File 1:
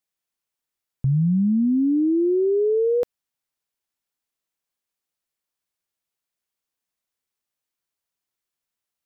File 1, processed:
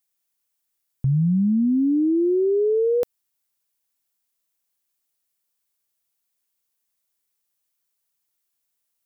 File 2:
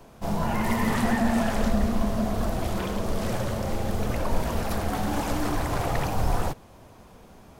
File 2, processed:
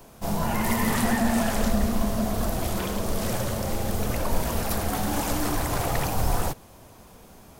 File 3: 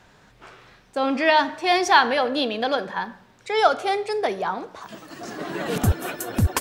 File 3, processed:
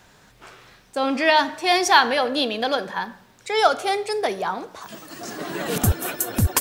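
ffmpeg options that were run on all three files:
-af "crystalizer=i=1.5:c=0"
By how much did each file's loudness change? 0.0, +1.0, +1.0 LU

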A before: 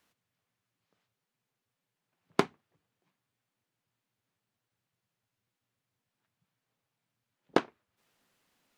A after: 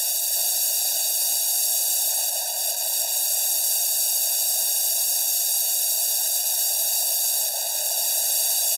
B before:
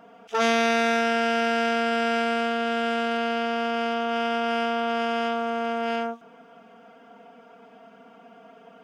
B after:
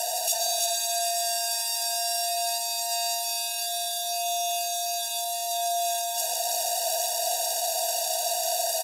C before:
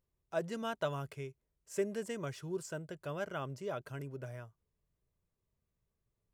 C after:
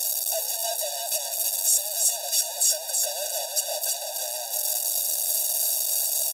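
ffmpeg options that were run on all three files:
-filter_complex "[0:a]aeval=exprs='val(0)+0.5*0.0355*sgn(val(0))':channel_layout=same,highshelf=frequency=2900:gain=9.5,bandreject=frequency=3500:width=14,acompressor=mode=upward:threshold=-25dB:ratio=2.5,alimiter=limit=-14.5dB:level=0:latency=1,volume=32.5dB,asoftclip=hard,volume=-32.5dB,highpass=frequency=660:width_type=q:width=4.9,aexciter=amount=11.2:drive=6.6:freq=3300,asplit=2[link_01][link_02];[link_02]aecho=0:1:327:0.631[link_03];[link_01][link_03]amix=inputs=2:normalize=0,aresample=32000,aresample=44100,afftfilt=real='re*eq(mod(floor(b*sr/1024/490),2),1)':imag='im*eq(mod(floor(b*sr/1024/490),2),1)':win_size=1024:overlap=0.75,volume=-8dB"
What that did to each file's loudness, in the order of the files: +13.5, −1.0, +17.5 LU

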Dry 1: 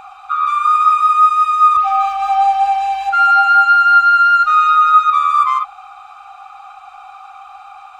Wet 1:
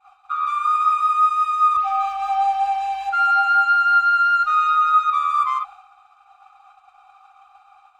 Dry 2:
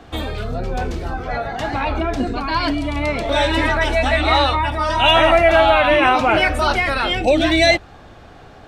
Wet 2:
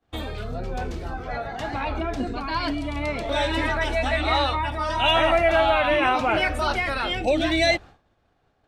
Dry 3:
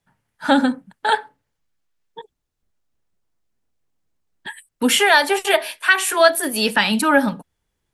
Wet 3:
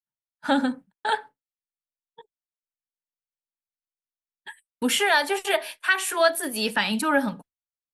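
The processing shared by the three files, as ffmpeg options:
-af "agate=range=-33dB:threshold=-29dB:ratio=3:detection=peak,volume=-6.5dB"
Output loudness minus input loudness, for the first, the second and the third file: −6.5, −6.5, −6.5 LU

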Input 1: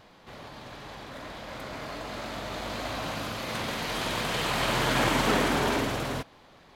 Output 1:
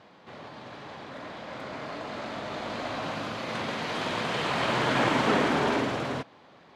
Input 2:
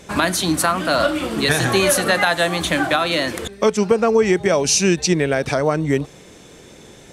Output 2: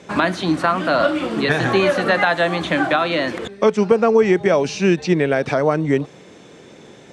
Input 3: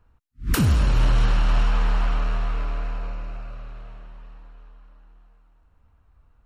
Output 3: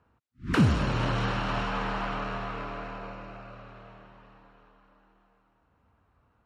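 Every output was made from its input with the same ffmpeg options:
-filter_complex "[0:a]acrossover=split=3800[link_01][link_02];[link_02]acompressor=threshold=-32dB:ratio=4:attack=1:release=60[link_03];[link_01][link_03]amix=inputs=2:normalize=0,highpass=130,lowpass=7700,highshelf=frequency=3900:gain=-8,volume=1.5dB"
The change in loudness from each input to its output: 0.0, 0.0, −5.0 LU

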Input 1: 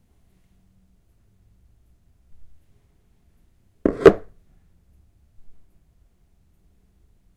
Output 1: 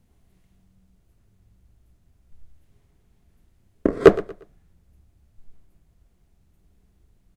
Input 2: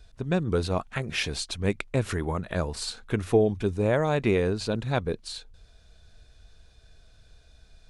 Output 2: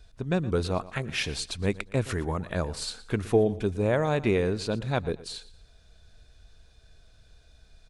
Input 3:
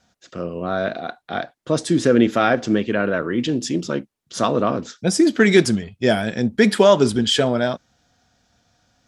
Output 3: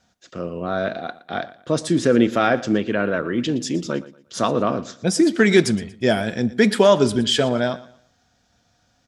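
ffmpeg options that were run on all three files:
-af "aecho=1:1:117|234|351:0.126|0.0378|0.0113,volume=-1dB"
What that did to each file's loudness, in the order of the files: −1.0, −1.0, −1.0 LU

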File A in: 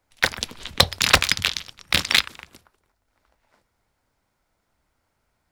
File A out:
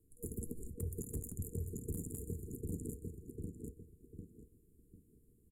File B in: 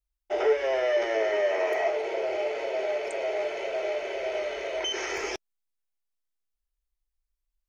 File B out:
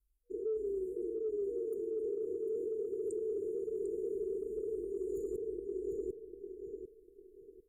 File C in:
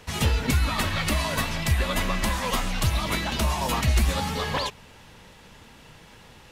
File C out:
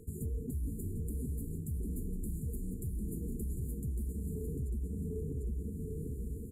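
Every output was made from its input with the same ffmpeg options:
-filter_complex "[0:a]afftfilt=real='re*(1-between(b*sr/4096,480,6800))':imag='im*(1-between(b*sr/4096,480,6800))':win_size=4096:overlap=0.75,asplit=2[link_01][link_02];[link_02]adelay=748,lowpass=frequency=3600:poles=1,volume=-3.5dB,asplit=2[link_03][link_04];[link_04]adelay=748,lowpass=frequency=3600:poles=1,volume=0.29,asplit=2[link_05][link_06];[link_06]adelay=748,lowpass=frequency=3600:poles=1,volume=0.29,asplit=2[link_07][link_08];[link_08]adelay=748,lowpass=frequency=3600:poles=1,volume=0.29[link_09];[link_03][link_05][link_07][link_09]amix=inputs=4:normalize=0[link_10];[link_01][link_10]amix=inputs=2:normalize=0,acontrast=89,aexciter=amount=3:drive=4.8:freq=9800,highshelf=frequency=2700:gain=-9.5,areverse,acompressor=threshold=-29dB:ratio=8,areverse,alimiter=level_in=4.5dB:limit=-24dB:level=0:latency=1:release=143,volume=-4.5dB,aresample=32000,aresample=44100,volume=-1.5dB"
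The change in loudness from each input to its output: −24.5, −10.0, −14.0 LU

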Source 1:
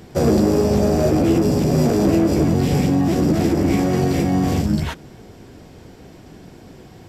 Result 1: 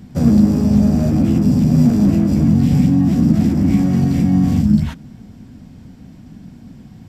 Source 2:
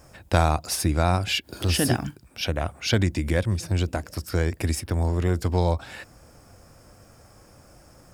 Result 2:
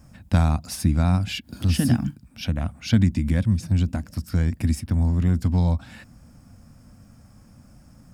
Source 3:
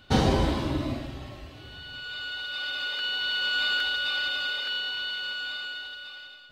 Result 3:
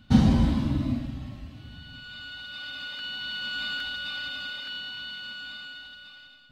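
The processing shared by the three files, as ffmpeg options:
-af "lowshelf=frequency=300:width_type=q:width=3:gain=8,volume=-5.5dB"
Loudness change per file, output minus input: +3.5, +1.5, −1.5 LU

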